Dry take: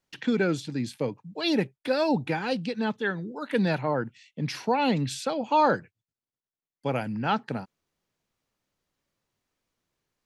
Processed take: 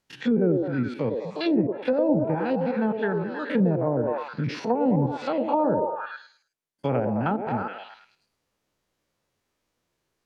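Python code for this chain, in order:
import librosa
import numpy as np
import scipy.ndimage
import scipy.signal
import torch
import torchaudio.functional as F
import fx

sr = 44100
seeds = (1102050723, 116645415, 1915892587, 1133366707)

y = fx.spec_steps(x, sr, hold_ms=50)
y = fx.echo_stepped(y, sr, ms=105, hz=440.0, octaves=0.7, feedback_pct=70, wet_db=-1.0)
y = fx.env_lowpass_down(y, sr, base_hz=560.0, full_db=-22.0)
y = y * librosa.db_to_amplitude(4.5)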